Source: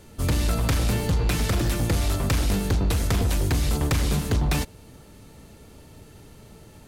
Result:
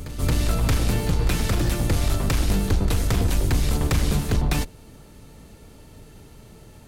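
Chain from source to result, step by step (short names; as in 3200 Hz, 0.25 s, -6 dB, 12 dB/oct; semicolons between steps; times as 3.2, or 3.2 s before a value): octaver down 2 oct, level -3 dB; reverse echo 0.224 s -13 dB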